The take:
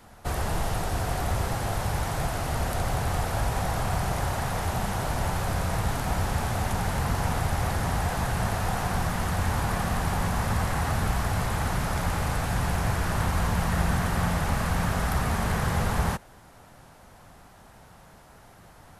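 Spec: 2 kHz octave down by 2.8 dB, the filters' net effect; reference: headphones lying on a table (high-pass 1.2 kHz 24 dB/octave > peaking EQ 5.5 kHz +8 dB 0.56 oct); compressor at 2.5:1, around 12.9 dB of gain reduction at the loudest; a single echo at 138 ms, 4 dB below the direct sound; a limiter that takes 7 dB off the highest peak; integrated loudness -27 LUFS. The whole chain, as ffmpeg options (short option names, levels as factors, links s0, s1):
-af "equalizer=f=2000:t=o:g=-3.5,acompressor=threshold=0.00891:ratio=2.5,alimiter=level_in=2.37:limit=0.0631:level=0:latency=1,volume=0.422,highpass=f=1200:w=0.5412,highpass=f=1200:w=1.3066,equalizer=f=5500:t=o:w=0.56:g=8,aecho=1:1:138:0.631,volume=9.44"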